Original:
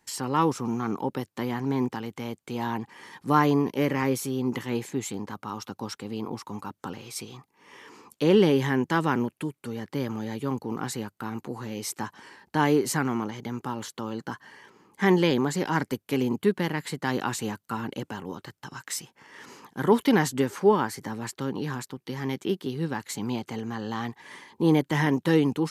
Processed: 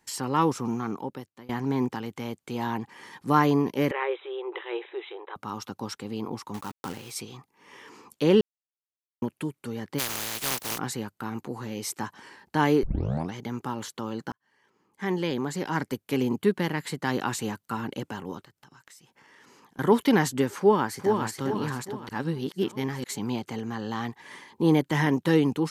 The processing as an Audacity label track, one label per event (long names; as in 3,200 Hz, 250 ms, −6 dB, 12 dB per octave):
0.670000	1.490000	fade out, to −23.5 dB
3.910000	5.360000	linear-phase brick-wall band-pass 330–4,000 Hz
6.540000	7.110000	log-companded quantiser 4 bits
8.410000	9.220000	silence
9.980000	10.770000	compressing power law on the bin magnitudes exponent 0.17
12.830000	12.830000	tape start 0.51 s
14.320000	16.220000	fade in
18.430000	19.790000	downward compressor 4 to 1, threshold −53 dBFS
20.580000	21.280000	delay throw 410 ms, feedback 45%, level −4.5 dB
22.090000	23.040000	reverse